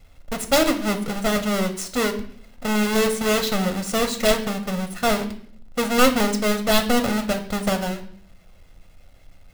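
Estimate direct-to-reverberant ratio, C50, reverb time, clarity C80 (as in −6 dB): 6.5 dB, 12.0 dB, 0.60 s, 15.5 dB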